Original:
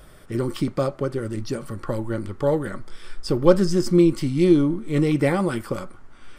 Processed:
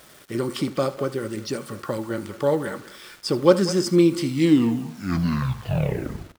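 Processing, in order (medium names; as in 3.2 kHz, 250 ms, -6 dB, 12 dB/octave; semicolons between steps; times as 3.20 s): tape stop on the ending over 2.10 s; Bessel high-pass 160 Hz, order 2; peaking EQ 4.5 kHz +4.5 dB 2.7 oct; speakerphone echo 200 ms, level -14 dB; bit crusher 8-bit; on a send: delay 76 ms -17 dB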